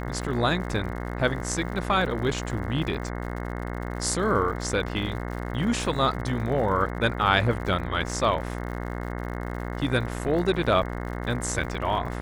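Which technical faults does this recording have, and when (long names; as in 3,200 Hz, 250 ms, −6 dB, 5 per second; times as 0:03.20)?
mains buzz 60 Hz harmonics 36 −32 dBFS
surface crackle 91 per second −36 dBFS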